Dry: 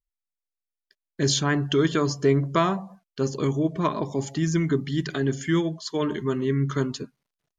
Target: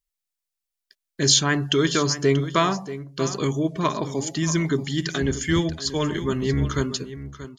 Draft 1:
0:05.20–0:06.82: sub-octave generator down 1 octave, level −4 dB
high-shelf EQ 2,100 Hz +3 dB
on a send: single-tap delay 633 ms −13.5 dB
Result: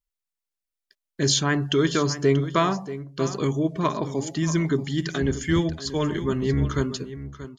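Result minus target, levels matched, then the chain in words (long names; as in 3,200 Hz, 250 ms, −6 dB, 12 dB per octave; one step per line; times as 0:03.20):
4,000 Hz band −3.0 dB
0:05.20–0:06.82: sub-octave generator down 1 octave, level −4 dB
high-shelf EQ 2,100 Hz +9 dB
on a send: single-tap delay 633 ms −13.5 dB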